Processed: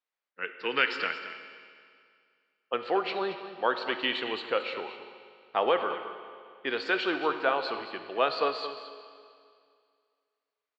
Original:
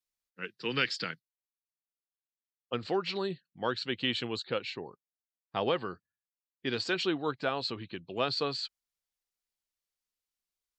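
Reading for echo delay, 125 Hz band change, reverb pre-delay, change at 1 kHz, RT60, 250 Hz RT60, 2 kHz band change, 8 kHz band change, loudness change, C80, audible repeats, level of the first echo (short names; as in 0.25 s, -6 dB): 0.222 s, -13.5 dB, 19 ms, +7.5 dB, 2.2 s, 2.2 s, +6.0 dB, under -10 dB, +3.5 dB, 8.0 dB, 1, -12.5 dB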